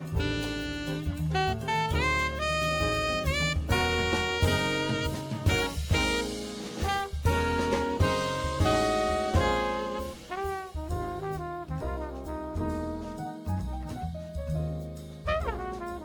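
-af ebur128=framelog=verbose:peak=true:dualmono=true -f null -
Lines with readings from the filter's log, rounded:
Integrated loudness:
  I:         -26.4 LUFS
  Threshold: -36.4 LUFS
Loudness range:
  LRA:         7.8 LU
  Threshold: -46.1 LUFS
  LRA low:   -31.9 LUFS
  LRA high:  -24.1 LUFS
True peak:
  Peak:      -12.3 dBFS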